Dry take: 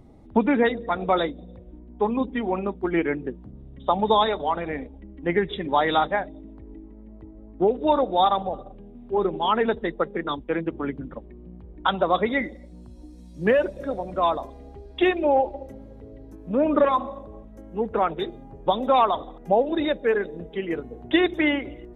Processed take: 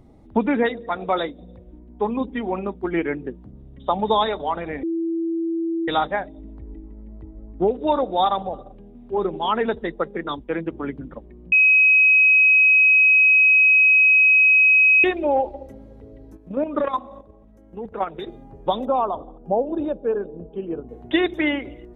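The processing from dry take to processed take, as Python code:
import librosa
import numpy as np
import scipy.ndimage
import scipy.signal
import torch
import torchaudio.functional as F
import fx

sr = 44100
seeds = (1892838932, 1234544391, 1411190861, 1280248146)

y = fx.low_shelf(x, sr, hz=220.0, db=-6.0, at=(0.66, 1.4))
y = fx.low_shelf(y, sr, hz=97.0, db=9.5, at=(6.38, 7.71))
y = fx.quant_float(y, sr, bits=8, at=(8.44, 9.32))
y = fx.level_steps(y, sr, step_db=10, at=(16.37, 18.27))
y = fx.moving_average(y, sr, points=22, at=(18.85, 20.89))
y = fx.edit(y, sr, fx.bleep(start_s=4.83, length_s=1.05, hz=331.0, db=-21.0),
    fx.bleep(start_s=11.52, length_s=3.52, hz=2540.0, db=-11.0), tone=tone)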